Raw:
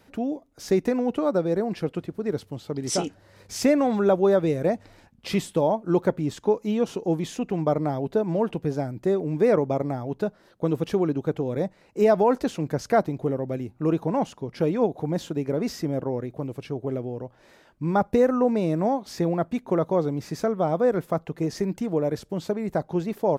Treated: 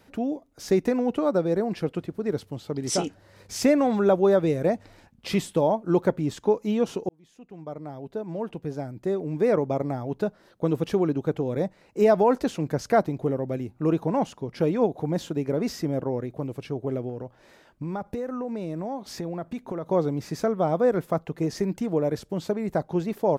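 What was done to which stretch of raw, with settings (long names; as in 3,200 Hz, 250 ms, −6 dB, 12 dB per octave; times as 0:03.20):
0:07.09–0:10.13: fade in
0:17.09–0:19.86: downward compressor, threshold −28 dBFS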